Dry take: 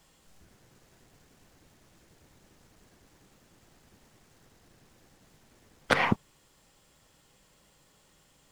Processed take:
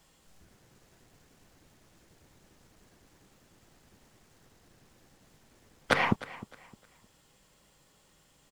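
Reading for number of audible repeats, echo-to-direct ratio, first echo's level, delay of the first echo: 2, -17.5 dB, -18.0 dB, 0.307 s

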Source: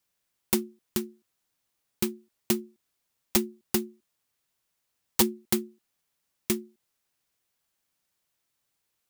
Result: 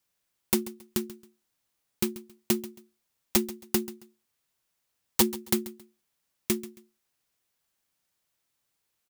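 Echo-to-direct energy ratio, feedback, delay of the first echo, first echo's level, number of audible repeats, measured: -17.0 dB, 27%, 0.136 s, -17.5 dB, 2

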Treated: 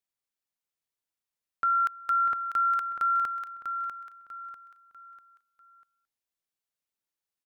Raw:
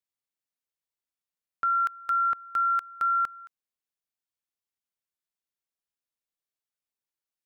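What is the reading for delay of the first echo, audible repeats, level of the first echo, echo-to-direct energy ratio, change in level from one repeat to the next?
0.645 s, 4, -7.5 dB, -7.0 dB, -9.0 dB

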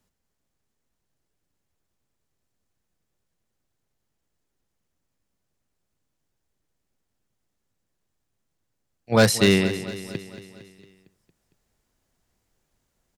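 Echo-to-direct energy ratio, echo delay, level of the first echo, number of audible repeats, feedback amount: -12.0 dB, 0.228 s, -14.0 dB, 5, 58%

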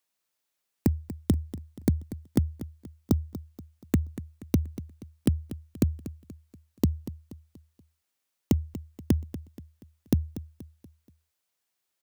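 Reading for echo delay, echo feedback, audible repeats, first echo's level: 0.239 s, 43%, 3, -14.5 dB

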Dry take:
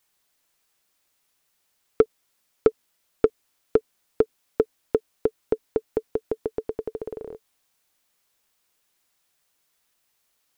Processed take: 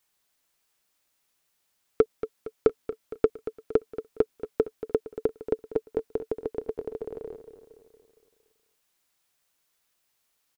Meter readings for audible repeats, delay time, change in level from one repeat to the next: 5, 0.231 s, -5.5 dB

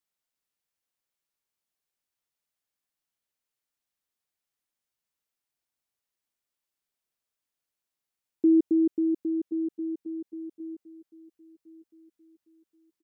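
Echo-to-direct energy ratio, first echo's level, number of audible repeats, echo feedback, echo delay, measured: -21.5 dB, -22.5 dB, 2, 41%, 1.071 s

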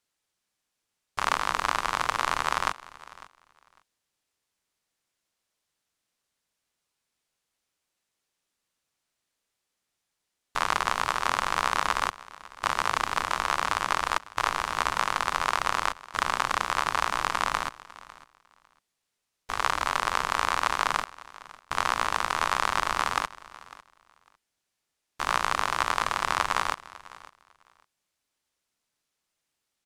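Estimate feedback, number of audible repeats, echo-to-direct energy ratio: no steady repeat, 1, -20.0 dB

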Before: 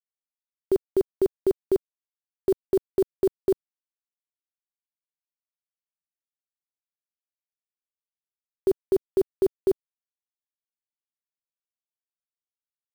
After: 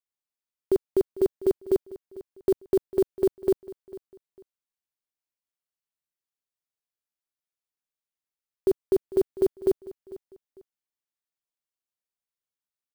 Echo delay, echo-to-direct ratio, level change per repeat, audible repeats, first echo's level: 0.449 s, -18.0 dB, -11.0 dB, 2, -18.5 dB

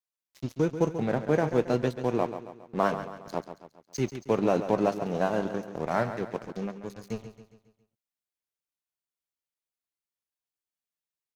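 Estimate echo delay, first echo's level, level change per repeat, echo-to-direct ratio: 0.137 s, -11.0 dB, -6.5 dB, -10.0 dB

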